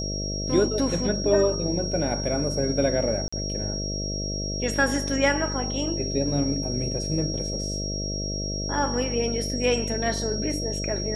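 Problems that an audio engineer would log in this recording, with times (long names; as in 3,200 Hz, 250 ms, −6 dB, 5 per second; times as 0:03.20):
mains buzz 50 Hz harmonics 13 −31 dBFS
whistle 5,600 Hz −31 dBFS
0:03.28–0:03.33: drop-out 45 ms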